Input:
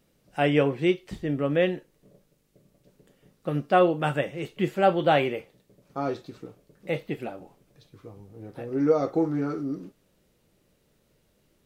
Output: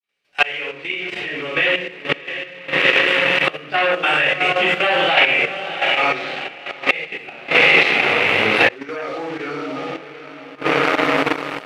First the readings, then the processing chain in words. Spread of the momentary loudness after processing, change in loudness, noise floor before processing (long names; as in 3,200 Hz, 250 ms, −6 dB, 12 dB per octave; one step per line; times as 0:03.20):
15 LU, +9.0 dB, −68 dBFS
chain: fade in at the beginning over 1.35 s
feedback delay with all-pass diffusion 711 ms, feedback 42%, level −10 dB
rectangular room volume 140 cubic metres, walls mixed, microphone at 3.6 metres
leveller curve on the samples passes 2
gate with flip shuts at −8 dBFS, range −28 dB
automatic gain control gain up to 13 dB
resonant band-pass 2,500 Hz, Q 2.2
output level in coarse steps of 10 dB
boost into a limiter +24.5 dB
level −1 dB